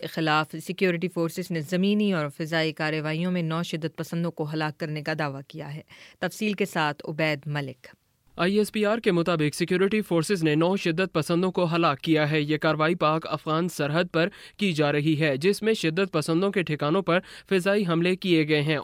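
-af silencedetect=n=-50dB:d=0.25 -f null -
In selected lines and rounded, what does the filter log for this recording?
silence_start: 7.94
silence_end: 8.27 | silence_duration: 0.33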